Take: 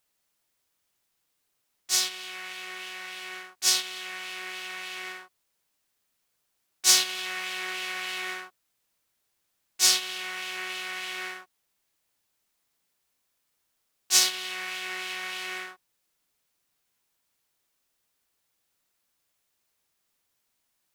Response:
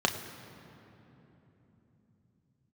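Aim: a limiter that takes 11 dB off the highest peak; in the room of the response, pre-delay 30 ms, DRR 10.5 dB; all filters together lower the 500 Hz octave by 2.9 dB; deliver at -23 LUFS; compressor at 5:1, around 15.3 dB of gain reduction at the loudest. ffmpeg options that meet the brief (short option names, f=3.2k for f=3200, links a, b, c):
-filter_complex "[0:a]equalizer=f=500:t=o:g=-5,acompressor=threshold=-33dB:ratio=5,alimiter=level_in=4dB:limit=-24dB:level=0:latency=1,volume=-4dB,asplit=2[a][b];[1:a]atrim=start_sample=2205,adelay=30[c];[b][c]afir=irnorm=-1:irlink=0,volume=-21.5dB[d];[a][d]amix=inputs=2:normalize=0,volume=16dB"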